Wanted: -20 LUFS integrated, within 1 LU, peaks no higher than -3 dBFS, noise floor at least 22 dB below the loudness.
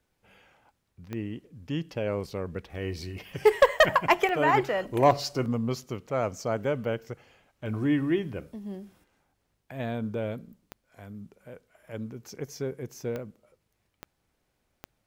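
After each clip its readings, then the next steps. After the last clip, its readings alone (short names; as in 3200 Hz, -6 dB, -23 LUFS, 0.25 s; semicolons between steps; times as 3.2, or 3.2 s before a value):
clicks 7; loudness -28.0 LUFS; peak -9.0 dBFS; loudness target -20.0 LUFS
-> de-click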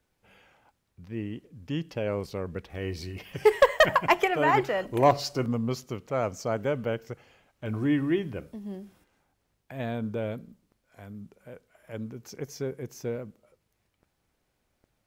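clicks 0; loudness -28.0 LUFS; peak -10.0 dBFS; loudness target -20.0 LUFS
-> gain +8 dB; limiter -3 dBFS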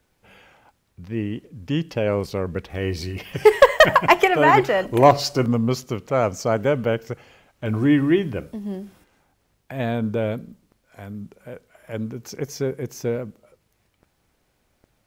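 loudness -20.5 LUFS; peak -3.0 dBFS; noise floor -68 dBFS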